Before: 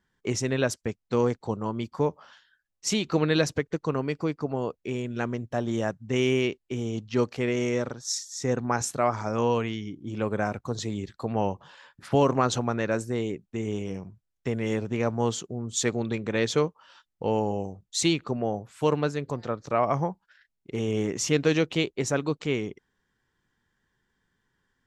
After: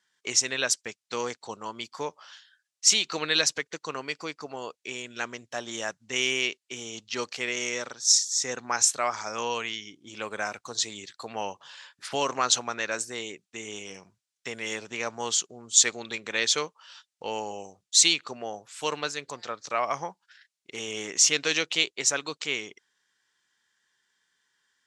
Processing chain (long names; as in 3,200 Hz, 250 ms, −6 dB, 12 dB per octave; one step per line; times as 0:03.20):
meter weighting curve ITU-R 468
level −1.5 dB